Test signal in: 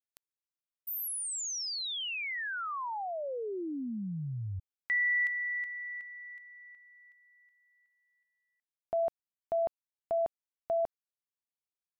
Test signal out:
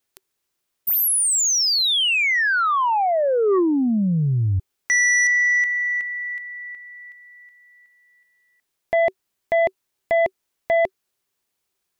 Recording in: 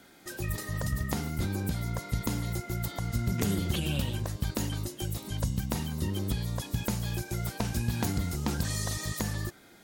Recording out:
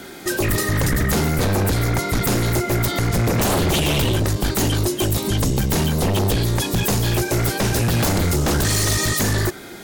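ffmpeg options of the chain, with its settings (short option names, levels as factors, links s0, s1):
-af "equalizer=f=380:t=o:w=0.2:g=8.5,aeval=exprs='0.178*sin(PI/2*5.01*val(0)/0.178)':c=same"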